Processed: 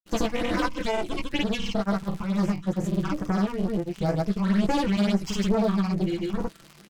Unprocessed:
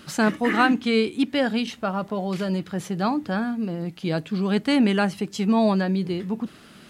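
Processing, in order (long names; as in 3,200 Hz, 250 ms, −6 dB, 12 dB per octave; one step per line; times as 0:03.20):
lower of the sound and its delayed copy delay 5.9 ms
downward compressor 2 to 1, threshold −30 dBFS, peak gain reduction 7.5 dB
noise gate −38 dBFS, range −8 dB
all-pass phaser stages 8, 2.2 Hz, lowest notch 460–4,100 Hz
double-tracking delay 20 ms −4.5 dB
surface crackle 89 per second −37 dBFS
granular cloud, pitch spread up and down by 0 semitones
highs frequency-modulated by the lows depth 0.14 ms
level +6 dB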